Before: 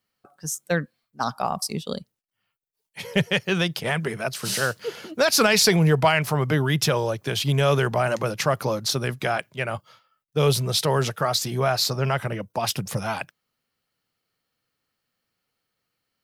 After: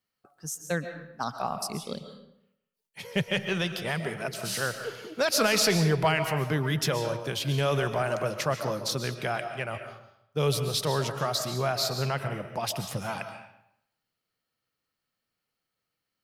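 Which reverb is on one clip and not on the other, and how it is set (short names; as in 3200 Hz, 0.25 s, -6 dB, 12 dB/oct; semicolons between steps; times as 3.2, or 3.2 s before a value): digital reverb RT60 0.76 s, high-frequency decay 0.8×, pre-delay 95 ms, DRR 7.5 dB; gain -6 dB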